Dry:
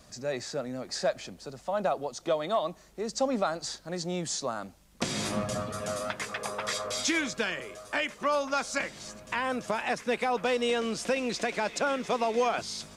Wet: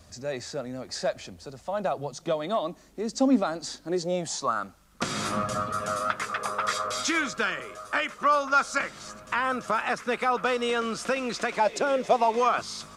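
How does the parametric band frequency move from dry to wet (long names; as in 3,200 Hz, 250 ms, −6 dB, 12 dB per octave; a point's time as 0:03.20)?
parametric band +13 dB 0.45 octaves
0:01.72 83 Hz
0:02.54 270 Hz
0:03.80 270 Hz
0:04.53 1,300 Hz
0:11.52 1,300 Hz
0:11.79 360 Hz
0:12.43 1,200 Hz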